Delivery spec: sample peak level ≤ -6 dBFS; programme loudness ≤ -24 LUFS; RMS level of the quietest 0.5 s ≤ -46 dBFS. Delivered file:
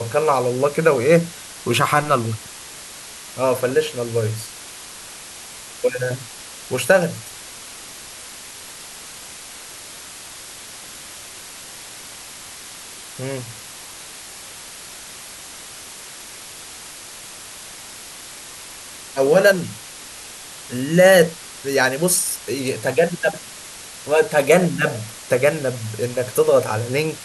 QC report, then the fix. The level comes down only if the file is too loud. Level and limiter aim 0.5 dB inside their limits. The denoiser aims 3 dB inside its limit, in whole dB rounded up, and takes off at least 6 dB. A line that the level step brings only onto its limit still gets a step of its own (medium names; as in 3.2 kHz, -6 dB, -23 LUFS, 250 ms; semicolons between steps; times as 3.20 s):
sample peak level -2.0 dBFS: fail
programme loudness -19.0 LUFS: fail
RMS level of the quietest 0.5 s -38 dBFS: fail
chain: noise reduction 6 dB, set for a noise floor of -38 dBFS; trim -5.5 dB